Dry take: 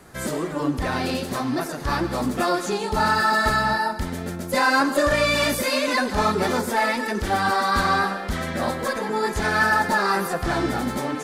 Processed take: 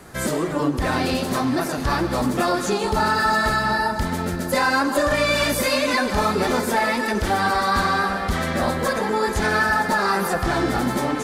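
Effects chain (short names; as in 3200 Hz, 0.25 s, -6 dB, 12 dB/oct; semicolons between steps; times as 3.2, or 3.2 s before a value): compressor 2.5:1, threshold -23 dBFS, peak gain reduction 6 dB; on a send: echo with dull and thin repeats by turns 0.329 s, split 1200 Hz, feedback 62%, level -11 dB; on the sum: gain +4.5 dB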